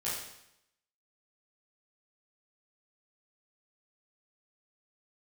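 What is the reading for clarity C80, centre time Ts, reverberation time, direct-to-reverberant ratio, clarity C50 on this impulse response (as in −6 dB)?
4.5 dB, 59 ms, 0.80 s, −9.5 dB, 1.0 dB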